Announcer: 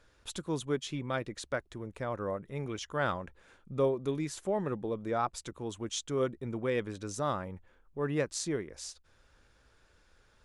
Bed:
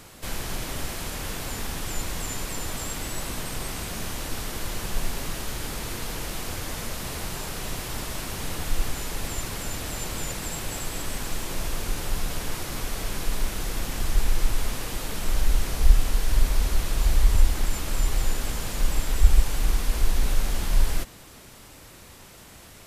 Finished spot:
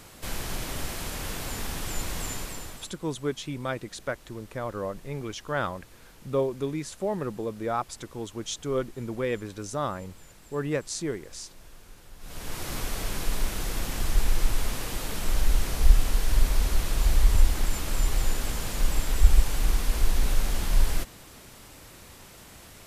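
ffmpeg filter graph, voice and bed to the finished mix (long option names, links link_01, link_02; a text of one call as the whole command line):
ffmpeg -i stem1.wav -i stem2.wav -filter_complex "[0:a]adelay=2550,volume=2.5dB[link_01];[1:a]volume=18.5dB,afade=type=out:start_time=2.27:duration=0.65:silence=0.105925,afade=type=in:start_time=12.19:duration=0.51:silence=0.1[link_02];[link_01][link_02]amix=inputs=2:normalize=0" out.wav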